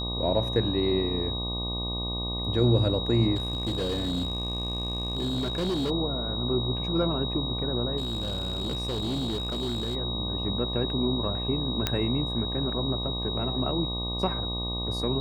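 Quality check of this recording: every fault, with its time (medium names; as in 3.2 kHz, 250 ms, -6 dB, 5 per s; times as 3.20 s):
buzz 60 Hz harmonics 20 -33 dBFS
whine 3.8 kHz -32 dBFS
3.35–5.91 s: clipped -24.5 dBFS
7.97–9.96 s: clipped -26 dBFS
11.87 s: pop -9 dBFS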